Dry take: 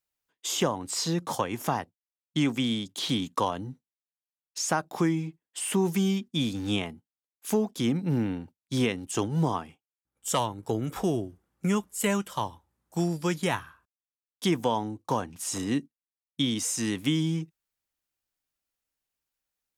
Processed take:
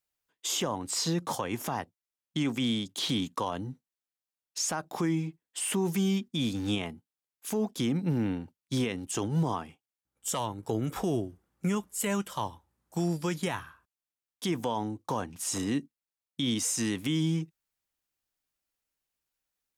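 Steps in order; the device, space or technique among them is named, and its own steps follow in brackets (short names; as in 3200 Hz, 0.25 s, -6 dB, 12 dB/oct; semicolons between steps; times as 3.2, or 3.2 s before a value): clipper into limiter (hard clip -13 dBFS, distortion -41 dB; limiter -20.5 dBFS, peak gain reduction 7.5 dB)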